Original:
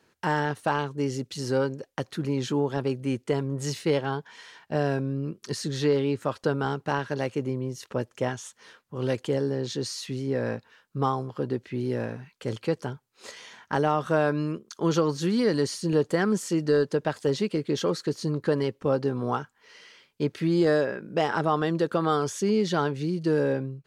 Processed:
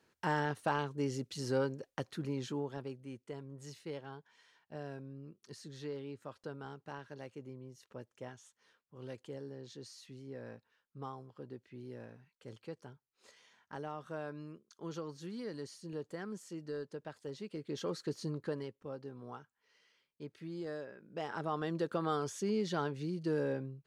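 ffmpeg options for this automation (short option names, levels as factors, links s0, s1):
-af "volume=3.98,afade=t=out:st=1.89:d=1.16:silence=0.266073,afade=t=in:st=17.38:d=0.79:silence=0.334965,afade=t=out:st=18.17:d=0.62:silence=0.298538,afade=t=in:st=20.94:d=0.88:silence=0.316228"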